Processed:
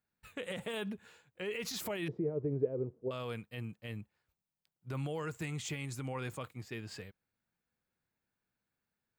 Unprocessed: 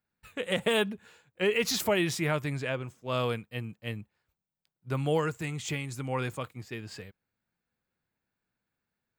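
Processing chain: peak limiter -27 dBFS, peak gain reduction 11 dB; 2.08–3.11 s: resonant low-pass 430 Hz, resonance Q 4.9; trim -3 dB

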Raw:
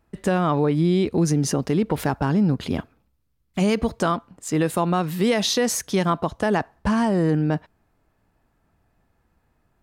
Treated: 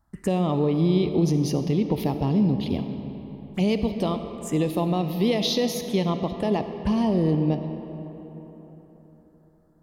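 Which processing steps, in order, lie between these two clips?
touch-sensitive phaser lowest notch 430 Hz, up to 1.5 kHz, full sweep at -22.5 dBFS; algorithmic reverb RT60 4 s, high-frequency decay 0.55×, pre-delay 15 ms, DRR 7.5 dB; trim -1.5 dB

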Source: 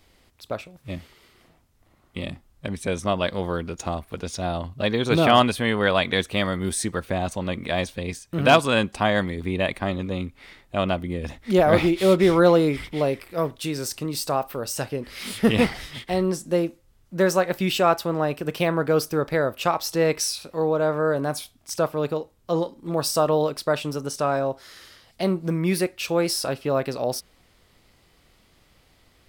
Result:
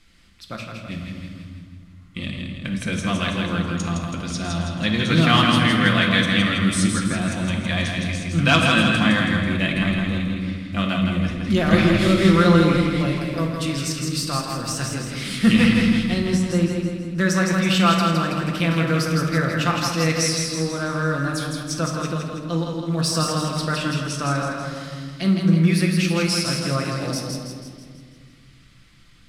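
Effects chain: block-companded coder 7-bit; low-pass 8.9 kHz 12 dB/octave; high-order bell 590 Hz -11.5 dB; hum notches 50/100/150 Hz; two-band feedback delay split 460 Hz, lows 215 ms, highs 163 ms, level -4 dB; on a send at -2 dB: reverberation RT60 1.3 s, pre-delay 6 ms; on the sum: trim +2 dB

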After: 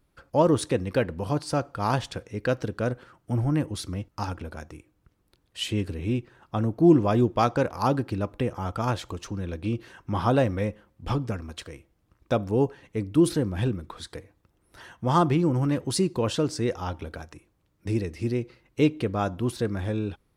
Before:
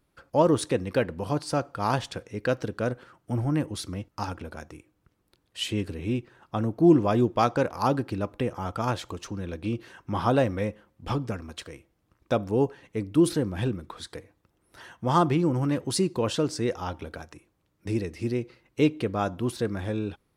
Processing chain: bass shelf 84 Hz +8 dB

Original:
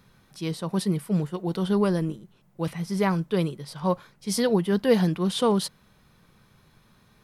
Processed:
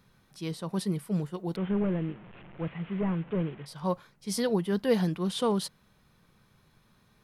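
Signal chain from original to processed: 1.56–3.66 s: one-bit delta coder 16 kbps, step -38 dBFS; trim -5 dB

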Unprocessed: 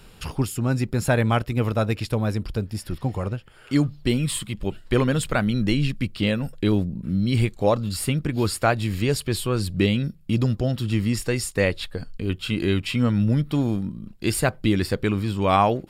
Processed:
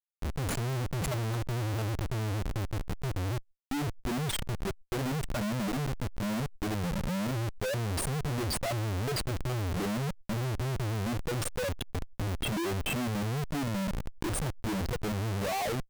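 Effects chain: spectral contrast enhancement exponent 3.4; Schmitt trigger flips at -31 dBFS; swell ahead of each attack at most 130 dB/s; trim -7 dB

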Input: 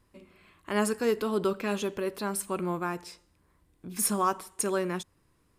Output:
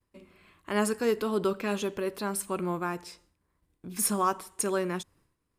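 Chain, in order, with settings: expander -59 dBFS

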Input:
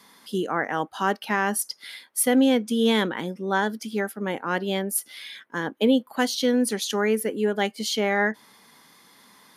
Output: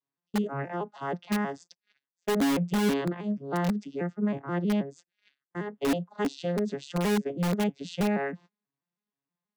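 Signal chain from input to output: vocoder on a broken chord major triad, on C#3, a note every 160 ms; gate -47 dBFS, range -31 dB; in parallel at -4.5 dB: integer overflow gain 17 dB; on the sum: trim -6 dB

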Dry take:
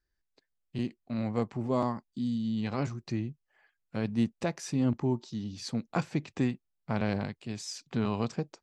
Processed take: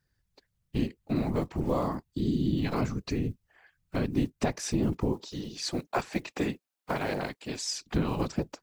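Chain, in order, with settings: block-companded coder 7-bit; 5.12–7.70 s: high-pass 310 Hz 12 dB/octave; compression 4:1, threshold -31 dBFS, peak gain reduction 8.5 dB; whisper effect; trim +6.5 dB

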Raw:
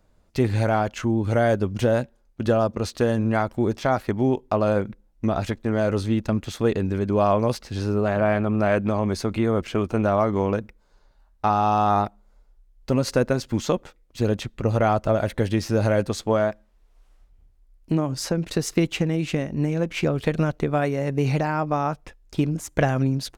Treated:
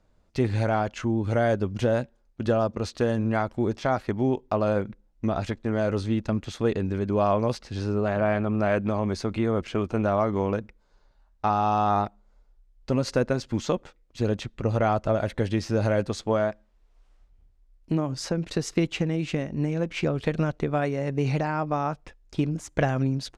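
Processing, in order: low-pass 7.6 kHz 12 dB/octave; trim -3 dB

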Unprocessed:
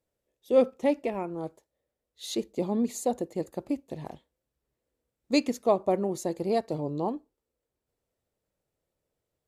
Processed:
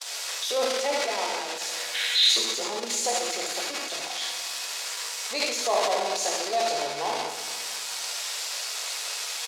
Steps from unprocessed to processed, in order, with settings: zero-crossing glitches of -17.5 dBFS; gate -31 dBFS, range -39 dB; reverberation RT60 1.8 s, pre-delay 3 ms, DRR -0.5 dB; time-frequency box 1.95–2.29 s, 1.4–4.2 kHz +12 dB; delay 76 ms -9 dB; transient shaper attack -10 dB, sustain +11 dB; in parallel at +1.5 dB: peak limiter -14 dBFS, peak gain reduction 9 dB; on the sum: Chebyshev band-pass 740–5100 Hz, order 2; trim -3.5 dB

